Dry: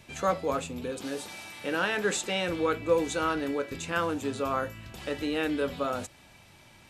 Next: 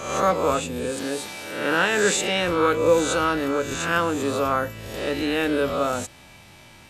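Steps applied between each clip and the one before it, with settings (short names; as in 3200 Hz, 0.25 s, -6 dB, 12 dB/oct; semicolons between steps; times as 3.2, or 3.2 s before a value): spectral swells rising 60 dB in 0.83 s; gain +5 dB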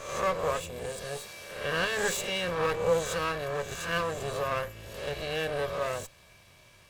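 minimum comb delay 1.8 ms; gain -7.5 dB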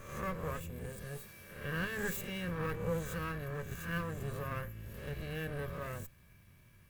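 EQ curve 220 Hz 0 dB, 660 Hz -17 dB, 1700 Hz -8 dB, 3900 Hz -18 dB, 7900 Hz -14 dB, 16000 Hz +3 dB; gain +1 dB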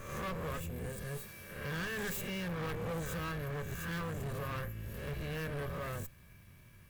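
hard clip -39 dBFS, distortion -8 dB; gain +3.5 dB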